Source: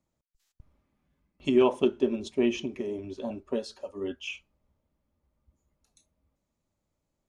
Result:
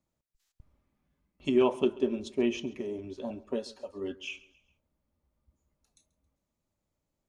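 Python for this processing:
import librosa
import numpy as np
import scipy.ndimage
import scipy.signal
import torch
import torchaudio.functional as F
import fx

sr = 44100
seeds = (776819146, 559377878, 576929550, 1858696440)

y = fx.echo_feedback(x, sr, ms=136, feedback_pct=45, wet_db=-21.0)
y = y * librosa.db_to_amplitude(-2.5)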